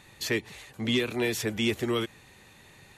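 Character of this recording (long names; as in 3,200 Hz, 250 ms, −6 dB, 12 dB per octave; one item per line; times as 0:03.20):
background noise floor −55 dBFS
spectral slope −4.0 dB per octave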